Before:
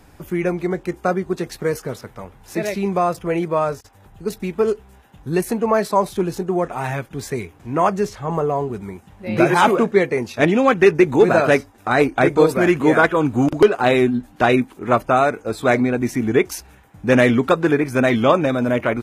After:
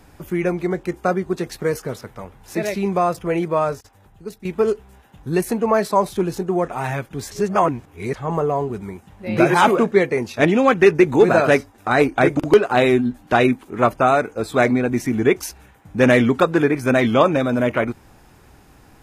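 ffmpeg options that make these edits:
-filter_complex "[0:a]asplit=5[a][b][c][d][e];[a]atrim=end=4.45,asetpts=PTS-STARTPTS,afade=t=out:st=3.71:d=0.74:silence=0.237137[f];[b]atrim=start=4.45:end=7.312,asetpts=PTS-STARTPTS,afade=t=in:d=0.004:c=hsin:silence=0.237137[g];[c]atrim=start=7.308:end=8.142,asetpts=PTS-STARTPTS,areverse[h];[d]atrim=start=8.138:end=12.372[i];[e]atrim=start=13.458[j];[f][g]concat=n=2:v=0:a=1[k];[k][h]acrossfade=d=0.004:c1=hsin:c2=hsin[l];[l][i]acrossfade=d=0.004:c1=hsin:c2=hsin[m];[m][j]acrossfade=d=0.004:c1=hsin:c2=hsin"

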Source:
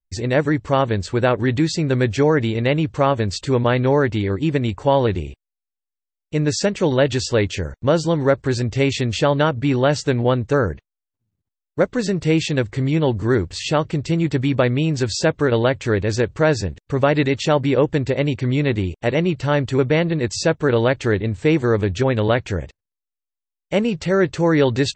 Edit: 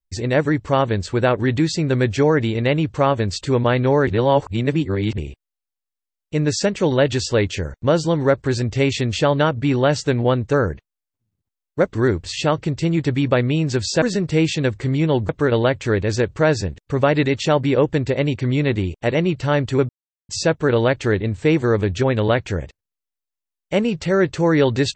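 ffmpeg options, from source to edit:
-filter_complex "[0:a]asplit=8[a][b][c][d][e][f][g][h];[a]atrim=end=4.072[i];[b]atrim=start=4.068:end=5.182,asetpts=PTS-STARTPTS,areverse[j];[c]atrim=start=5.178:end=11.952[k];[d]atrim=start=13.218:end=15.292[l];[e]atrim=start=11.948:end=13.222[m];[f]atrim=start=15.288:end=19.89,asetpts=PTS-STARTPTS,afade=t=out:st=4.598:d=0.004:c=hsin[n];[g]atrim=start=19.89:end=20.29,asetpts=PTS-STARTPTS,volume=0[o];[h]atrim=start=20.29,asetpts=PTS-STARTPTS,afade=t=in:d=0.004:c=hsin[p];[i][j]acrossfade=d=0.004:c1=hsin:c2=hsin[q];[q][k]acrossfade=d=0.004:c1=hsin:c2=hsin[r];[r][l]acrossfade=d=0.004:c1=hsin:c2=hsin[s];[s][m]acrossfade=d=0.004:c1=hsin:c2=hsin[t];[n][o][p]concat=n=3:v=0:a=1[u];[t][u]acrossfade=d=0.004:c1=hsin:c2=hsin"

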